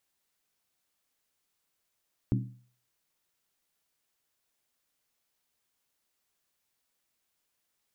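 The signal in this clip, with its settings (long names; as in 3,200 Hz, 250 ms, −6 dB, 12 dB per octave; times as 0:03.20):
struck skin, lowest mode 123 Hz, decay 0.48 s, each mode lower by 3.5 dB, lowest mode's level −22.5 dB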